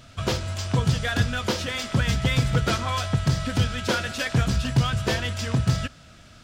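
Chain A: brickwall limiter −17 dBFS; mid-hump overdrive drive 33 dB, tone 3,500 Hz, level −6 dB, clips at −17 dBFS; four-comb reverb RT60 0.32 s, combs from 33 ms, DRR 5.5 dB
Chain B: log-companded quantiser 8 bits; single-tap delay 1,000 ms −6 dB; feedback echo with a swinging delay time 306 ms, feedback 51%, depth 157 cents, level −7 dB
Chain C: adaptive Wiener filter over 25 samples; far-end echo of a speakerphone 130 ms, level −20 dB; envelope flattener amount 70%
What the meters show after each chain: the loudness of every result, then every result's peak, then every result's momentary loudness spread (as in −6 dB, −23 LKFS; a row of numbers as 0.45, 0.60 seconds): −22.0, −23.0, −20.0 LKFS; −11.5, −7.5, −5.0 dBFS; 2, 5, 2 LU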